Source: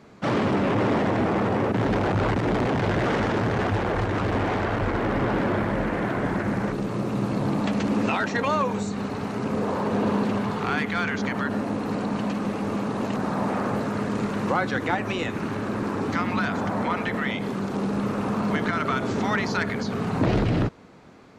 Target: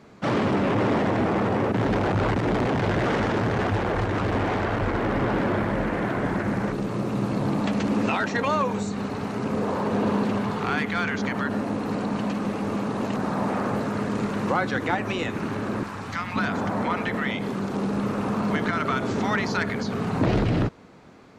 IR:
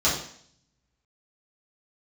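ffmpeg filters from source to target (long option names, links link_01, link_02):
-filter_complex "[0:a]asettb=1/sr,asplit=3[link_01][link_02][link_03];[link_01]atrim=end=15.834[link_04];[link_02]atrim=start=15.83:end=16.36,asetpts=PTS-STARTPTS,afade=type=in:duration=0.004:curve=qsin,afade=type=out:start_time=0.526:duration=0.004:curve=qsin,equalizer=frequency=340:width_type=o:width=1.9:gain=-13.5[link_05];[link_03]atrim=start=16.356[link_06];[link_04][link_05]acrossfade=duration=0.004:curve1=hsin:curve2=qsin[link_07];[link_07][link_06]acrossfade=duration=0.004:curve1=qsin:curve2=hsin"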